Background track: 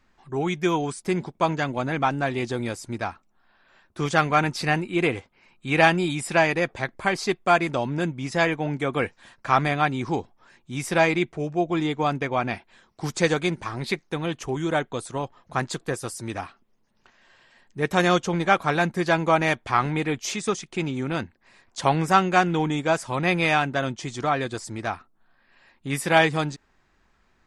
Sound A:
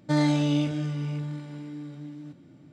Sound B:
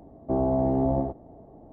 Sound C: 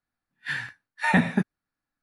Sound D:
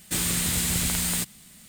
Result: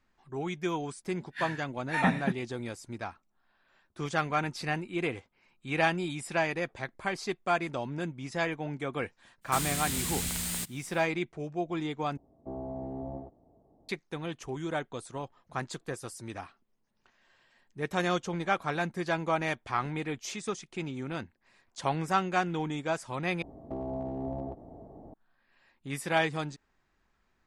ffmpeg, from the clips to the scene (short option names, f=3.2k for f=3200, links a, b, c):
-filter_complex "[2:a]asplit=2[a][b];[0:a]volume=-9dB[c];[b]acompressor=threshold=-32dB:ratio=4:attack=0.13:release=256:knee=1:detection=peak[d];[c]asplit=3[e][f][g];[e]atrim=end=12.174[h];[a]atrim=end=1.72,asetpts=PTS-STARTPTS,volume=-14.5dB[i];[f]atrim=start=13.886:end=23.424[j];[d]atrim=end=1.72[k];[g]atrim=start=25.136[l];[3:a]atrim=end=2.02,asetpts=PTS-STARTPTS,volume=-6.5dB,afade=t=in:d=0.004:c=hsin,afade=t=out:st=2.016:d=0.004:c=hsin,adelay=900[m];[4:a]atrim=end=1.68,asetpts=PTS-STARTPTS,volume=-7.5dB,afade=t=in:d=0.1,afade=t=out:st=1.58:d=0.1,adelay=9410[n];[h][i]acrossfade=d=0.004:c1=hsin:c2=hsin[o];[o][j]acrossfade=d=0.004:c1=hsin:c2=hsin[p];[p][k]acrossfade=d=0.004:c1=hsin:c2=hsin[q];[q][l]acrossfade=d=0.004:c1=hsin:c2=hsin[r];[r][m][n]amix=inputs=3:normalize=0"